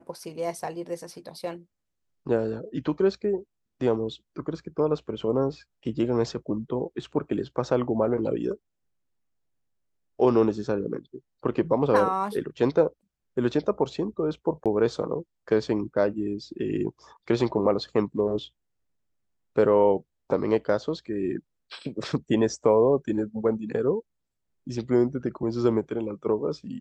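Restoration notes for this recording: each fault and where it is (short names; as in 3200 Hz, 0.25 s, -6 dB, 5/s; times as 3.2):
14.64–14.66 gap 17 ms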